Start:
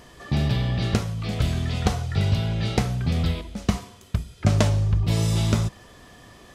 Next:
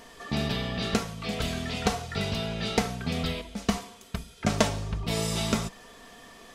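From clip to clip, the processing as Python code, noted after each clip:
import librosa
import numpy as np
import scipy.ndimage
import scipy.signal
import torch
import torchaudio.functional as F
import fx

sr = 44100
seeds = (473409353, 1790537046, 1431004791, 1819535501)

y = fx.peak_eq(x, sr, hz=73.0, db=-10.5, octaves=2.9)
y = y + 0.46 * np.pad(y, (int(4.4 * sr / 1000.0), 0))[:len(y)]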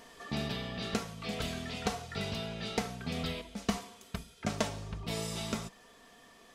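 y = fx.low_shelf(x, sr, hz=71.0, db=-6.0)
y = fx.rider(y, sr, range_db=3, speed_s=0.5)
y = F.gain(torch.from_numpy(y), -6.5).numpy()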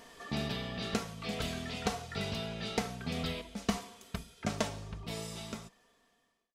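y = fx.fade_out_tail(x, sr, length_s=2.16)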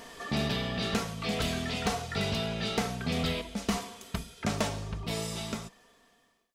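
y = 10.0 ** (-28.0 / 20.0) * np.tanh(x / 10.0 ** (-28.0 / 20.0))
y = F.gain(torch.from_numpy(y), 7.0).numpy()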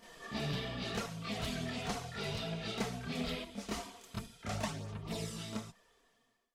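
y = fx.chorus_voices(x, sr, voices=4, hz=0.74, base_ms=29, depth_ms=4.6, mix_pct=70)
y = F.gain(torch.from_numpy(y), -5.0).numpy()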